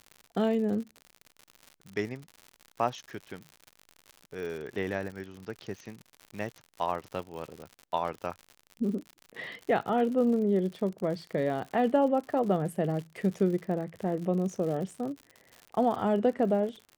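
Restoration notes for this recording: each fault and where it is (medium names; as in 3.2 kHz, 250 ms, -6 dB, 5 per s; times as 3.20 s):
crackle 100 per s -37 dBFS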